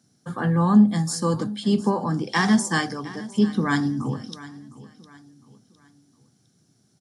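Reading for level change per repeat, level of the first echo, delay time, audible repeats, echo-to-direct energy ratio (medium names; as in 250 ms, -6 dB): -8.5 dB, -18.0 dB, 708 ms, 2, -17.5 dB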